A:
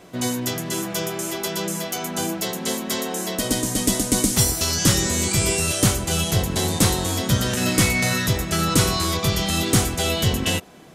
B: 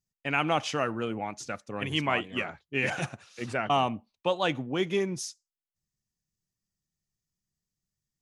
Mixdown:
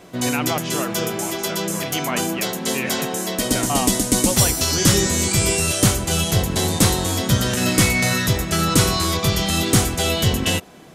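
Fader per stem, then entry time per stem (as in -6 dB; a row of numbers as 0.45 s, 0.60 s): +2.0 dB, +1.0 dB; 0.00 s, 0.00 s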